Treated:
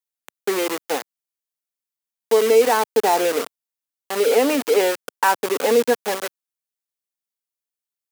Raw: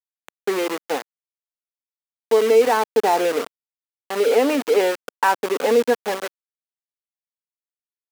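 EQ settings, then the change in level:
high-pass filter 110 Hz
high-shelf EQ 5,400 Hz +8 dB
0.0 dB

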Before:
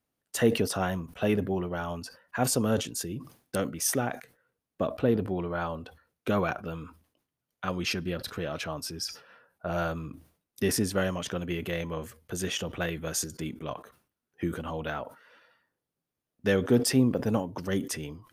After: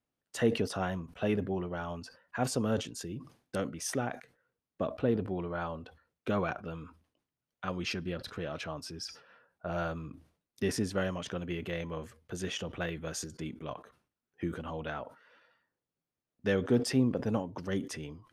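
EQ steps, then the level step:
high-frequency loss of the air 54 metres
−4.0 dB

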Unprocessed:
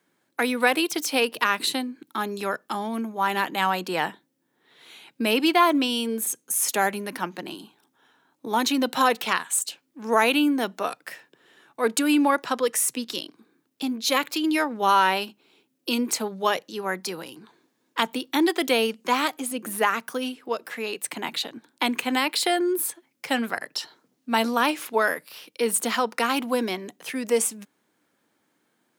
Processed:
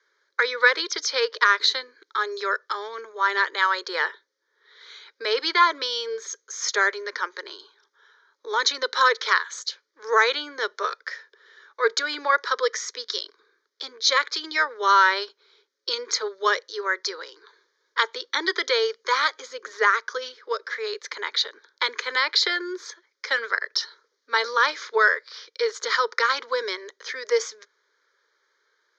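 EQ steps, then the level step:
Chebyshev band-pass filter 410–6,600 Hz, order 5
phaser with its sweep stopped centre 2,700 Hz, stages 6
+7.0 dB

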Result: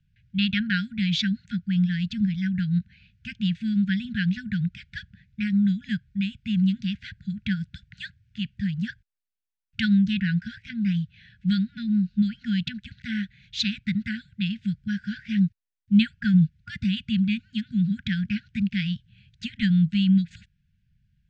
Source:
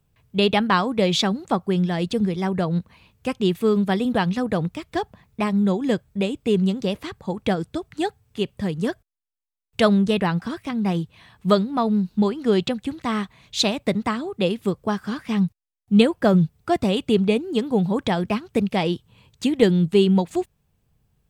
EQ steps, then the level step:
linear-phase brick-wall band-stop 230–1,400 Hz
low-pass filter 7,800 Hz 24 dB per octave
high-frequency loss of the air 160 metres
0.0 dB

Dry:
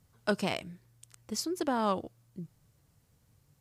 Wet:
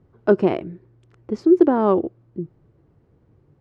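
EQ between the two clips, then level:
Bessel low-pass filter 1,200 Hz, order 2
parametric band 360 Hz +14 dB 0.68 octaves
+8.5 dB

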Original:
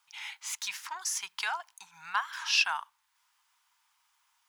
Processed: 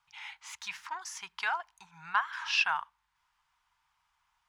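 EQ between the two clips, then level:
RIAA equalisation playback
dynamic equaliser 1,900 Hz, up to +4 dB, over −41 dBFS, Q 0.81
0.0 dB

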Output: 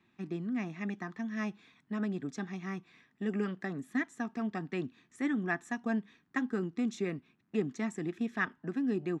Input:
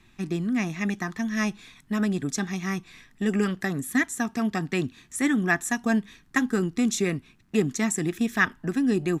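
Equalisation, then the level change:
high-pass filter 170 Hz 12 dB per octave
head-to-tape spacing loss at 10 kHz 21 dB
−7.0 dB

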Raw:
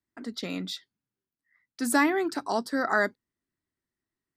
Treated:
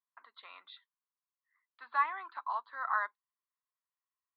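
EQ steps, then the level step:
four-pole ladder high-pass 1,000 Hz, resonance 80%
Butterworth low-pass 4,200 Hz 96 dB per octave
high-frequency loss of the air 140 metres
0.0 dB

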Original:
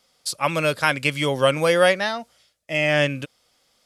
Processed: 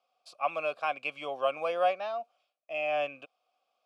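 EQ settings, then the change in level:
formant filter a
high-pass filter 160 Hz
0.0 dB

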